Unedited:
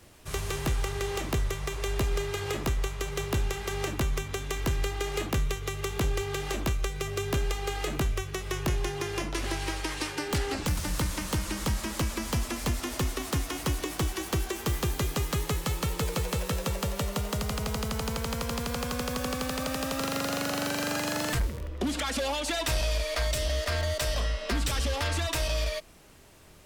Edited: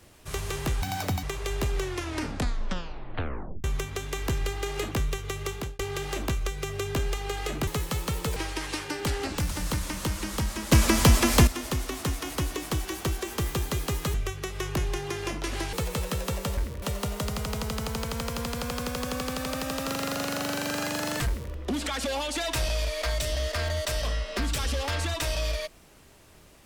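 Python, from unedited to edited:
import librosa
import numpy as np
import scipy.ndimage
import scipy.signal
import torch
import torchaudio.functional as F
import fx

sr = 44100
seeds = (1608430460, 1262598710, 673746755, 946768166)

y = fx.edit(x, sr, fx.speed_span(start_s=0.82, length_s=0.79, speed=1.92),
    fx.tape_stop(start_s=2.11, length_s=1.91),
    fx.fade_out_span(start_s=5.87, length_s=0.3),
    fx.swap(start_s=8.05, length_s=1.59, other_s=15.42, other_length_s=0.69),
    fx.clip_gain(start_s=12.0, length_s=0.75, db=11.0),
    fx.duplicate(start_s=21.4, length_s=0.25, to_s=16.95), tone=tone)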